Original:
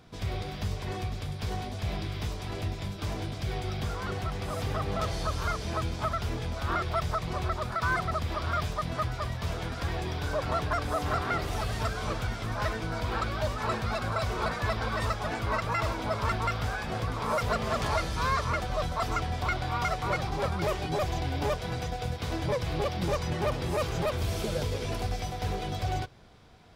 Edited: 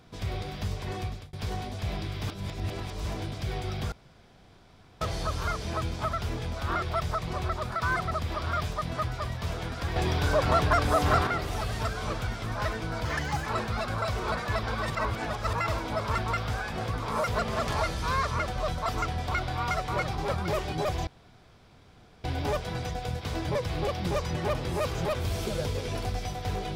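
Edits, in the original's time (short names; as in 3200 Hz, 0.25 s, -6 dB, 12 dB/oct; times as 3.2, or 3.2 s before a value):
1.07–1.33 fade out
2.27–3.05 reverse
3.92–5.01 room tone
9.96–11.27 gain +6 dB
13.05–13.6 speed 134%
15.04–15.67 reverse
21.21 insert room tone 1.17 s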